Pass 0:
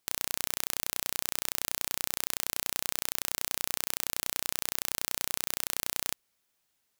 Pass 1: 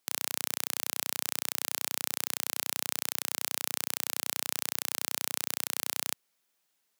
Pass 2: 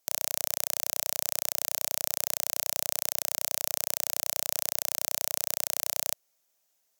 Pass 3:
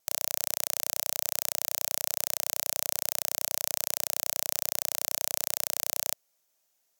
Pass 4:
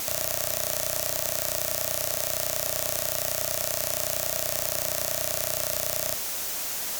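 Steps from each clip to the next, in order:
Bessel high-pass 180 Hz, order 4
fifteen-band EQ 630 Hz +10 dB, 6300 Hz +8 dB, 16000 Hz +10 dB; gain -3.5 dB
vibrato 1 Hz 5.8 cents
zero-crossing step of -24 dBFS; gain -1 dB

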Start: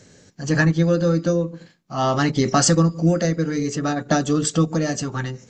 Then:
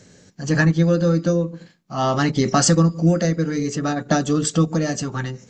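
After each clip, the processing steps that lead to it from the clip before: bell 190 Hz +4 dB 0.31 oct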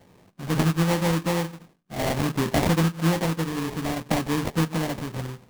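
sample-rate reducer 1400 Hz, jitter 20%; gain -5.5 dB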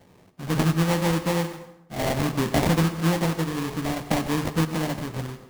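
plate-style reverb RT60 0.81 s, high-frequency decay 0.7×, pre-delay 85 ms, DRR 11.5 dB

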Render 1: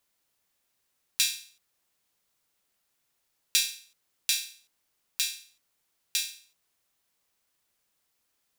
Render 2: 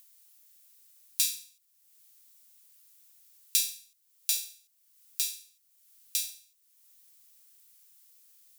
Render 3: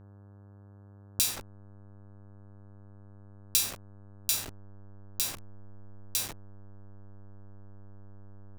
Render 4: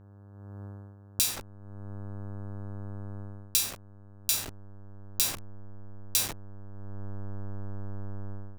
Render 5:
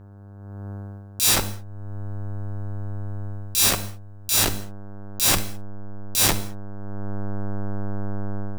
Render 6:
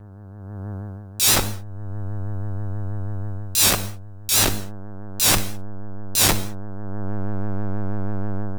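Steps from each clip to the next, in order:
differentiator; in parallel at -2 dB: upward compressor, threshold -36 dBFS; on the sum: gain -5.5 dB
level-crossing sampler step -33.5 dBFS; buzz 100 Hz, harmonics 17, -52 dBFS -8 dB/oct
AGC gain up to 14 dB; gain -1 dB
transient shaper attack -11 dB, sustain +11 dB; non-linear reverb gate 0.24 s falling, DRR 10.5 dB; gain +8 dB
in parallel at -7 dB: overloaded stage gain 18 dB; on the sum: vibrato 6.2 Hz 79 cents

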